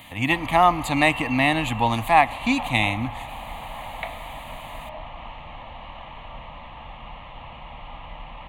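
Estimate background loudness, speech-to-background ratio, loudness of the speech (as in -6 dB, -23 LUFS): -36.0 LUFS, 15.0 dB, -21.0 LUFS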